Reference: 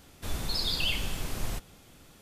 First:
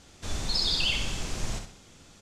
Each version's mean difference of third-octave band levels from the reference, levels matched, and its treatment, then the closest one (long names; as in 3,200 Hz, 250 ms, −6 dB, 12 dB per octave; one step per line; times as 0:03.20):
3.5 dB: low-pass with resonance 6,800 Hz, resonance Q 1.8
on a send: repeating echo 65 ms, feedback 34%, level −6.5 dB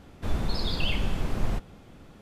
6.0 dB: low-pass filter 1,200 Hz 6 dB per octave
parametric band 210 Hz +3 dB 0.23 octaves
level +6.5 dB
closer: first